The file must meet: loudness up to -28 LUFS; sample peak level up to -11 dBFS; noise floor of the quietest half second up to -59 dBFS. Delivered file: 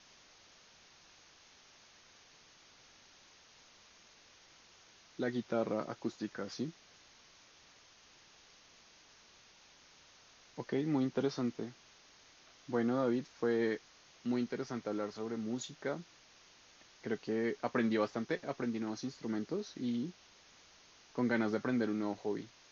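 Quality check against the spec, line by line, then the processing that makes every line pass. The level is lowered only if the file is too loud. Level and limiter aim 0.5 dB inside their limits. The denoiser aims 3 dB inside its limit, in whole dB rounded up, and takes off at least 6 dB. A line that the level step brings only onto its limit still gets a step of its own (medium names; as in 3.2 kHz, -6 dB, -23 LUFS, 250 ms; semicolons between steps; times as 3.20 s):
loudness -37.0 LUFS: pass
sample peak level -19.5 dBFS: pass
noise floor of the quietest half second -62 dBFS: pass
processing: none needed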